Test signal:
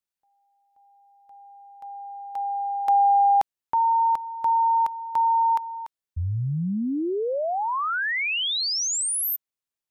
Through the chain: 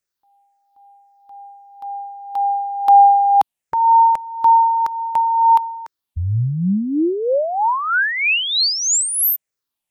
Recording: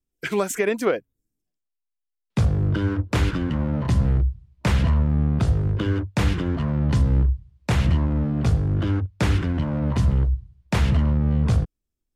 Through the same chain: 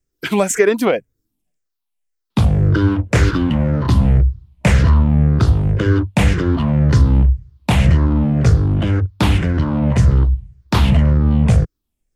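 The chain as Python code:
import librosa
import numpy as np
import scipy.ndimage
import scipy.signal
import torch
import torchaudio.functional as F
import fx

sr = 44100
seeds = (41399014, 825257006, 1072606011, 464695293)

y = fx.spec_ripple(x, sr, per_octave=0.53, drift_hz=-1.9, depth_db=8)
y = y * 10.0 ** (6.5 / 20.0)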